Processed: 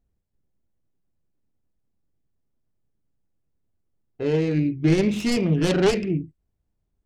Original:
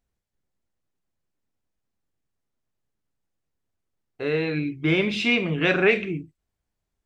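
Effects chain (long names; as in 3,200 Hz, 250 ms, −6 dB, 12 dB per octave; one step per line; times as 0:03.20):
phase distortion by the signal itself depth 0.32 ms
tilt shelving filter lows +7.5 dB, about 650 Hz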